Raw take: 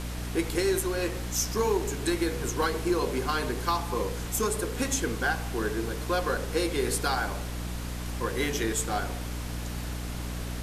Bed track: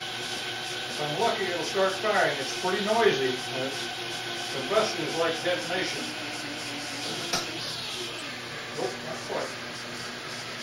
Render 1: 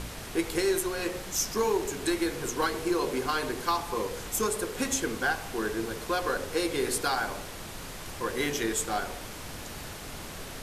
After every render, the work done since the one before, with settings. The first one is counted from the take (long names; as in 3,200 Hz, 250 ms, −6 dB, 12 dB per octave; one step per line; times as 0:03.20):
hum removal 60 Hz, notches 9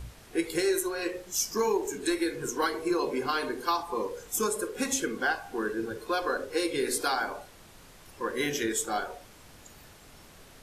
noise reduction from a noise print 12 dB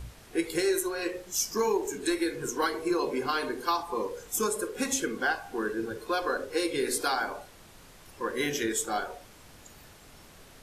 no processing that can be heard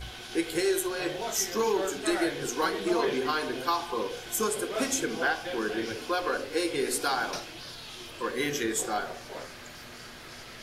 mix in bed track −9.5 dB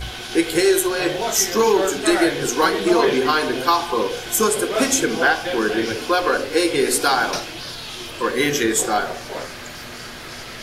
level +10.5 dB